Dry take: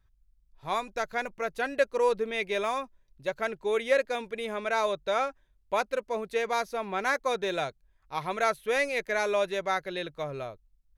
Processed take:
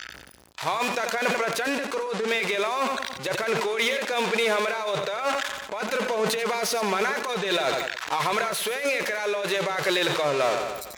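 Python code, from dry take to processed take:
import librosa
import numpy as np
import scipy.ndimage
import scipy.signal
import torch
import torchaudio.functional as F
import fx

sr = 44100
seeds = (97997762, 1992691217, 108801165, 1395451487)

y = x + 0.5 * 10.0 ** (-35.0 / 20.0) * np.sign(x)
y = fx.weighting(y, sr, curve='A')
y = fx.noise_reduce_blind(y, sr, reduce_db=18)
y = fx.comb(y, sr, ms=4.7, depth=0.38, at=(5.17, 7.64))
y = fx.over_compress(y, sr, threshold_db=-34.0, ratio=-1.0)
y = fx.peak_eq(y, sr, hz=61.0, db=12.5, octaves=0.65)
y = fx.echo_feedback(y, sr, ms=89, feedback_pct=50, wet_db=-13)
y = fx.sustainer(y, sr, db_per_s=41.0)
y = y * librosa.db_to_amplitude(7.5)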